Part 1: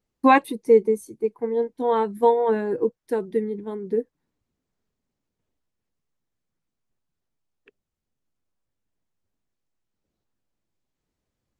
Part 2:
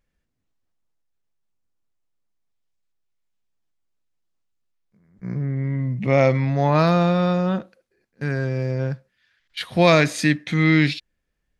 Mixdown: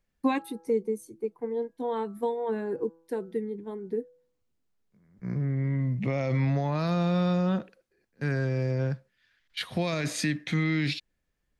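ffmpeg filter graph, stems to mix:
-filter_complex "[0:a]bandreject=f=164.8:t=h:w=4,bandreject=f=329.6:t=h:w=4,bandreject=f=494.4:t=h:w=4,bandreject=f=659.2:t=h:w=4,bandreject=f=824:t=h:w=4,bandreject=f=988.8:t=h:w=4,bandreject=f=1.1536k:t=h:w=4,bandreject=f=1.3184k:t=h:w=4,bandreject=f=1.4832k:t=h:w=4,bandreject=f=1.648k:t=h:w=4,volume=-5.5dB[a];[1:a]alimiter=limit=-13.5dB:level=0:latency=1:release=37,volume=-3.5dB[b];[a][b]amix=inputs=2:normalize=0,acrossover=split=330|3000[c][d][e];[d]acompressor=threshold=-30dB:ratio=4[f];[c][f][e]amix=inputs=3:normalize=0"

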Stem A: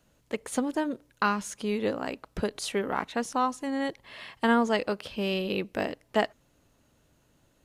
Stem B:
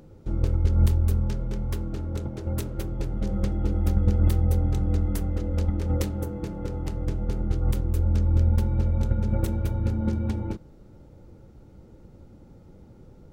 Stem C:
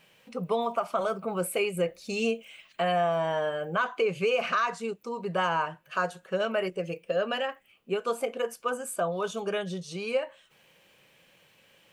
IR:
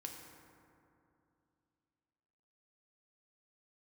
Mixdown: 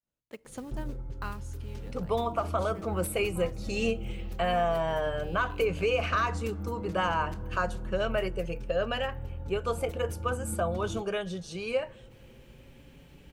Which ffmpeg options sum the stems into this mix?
-filter_complex "[0:a]agate=range=-33dB:threshold=-56dB:ratio=3:detection=peak,acrusher=bits=5:mode=log:mix=0:aa=0.000001,volume=-13dB,afade=t=out:st=1.15:d=0.67:silence=0.354813,asplit=2[a][b];[b]volume=-17.5dB[c];[1:a]acompressor=threshold=-29dB:ratio=10,asplit=2[d][e];[e]adelay=5.6,afreqshift=0.26[f];[d][f]amix=inputs=2:normalize=1,adelay=450,volume=-1dB[g];[2:a]adelay=1600,volume=-2dB,asplit=2[h][i];[i]volume=-17dB[j];[3:a]atrim=start_sample=2205[k];[c][j]amix=inputs=2:normalize=0[l];[l][k]afir=irnorm=-1:irlink=0[m];[a][g][h][m]amix=inputs=4:normalize=0"

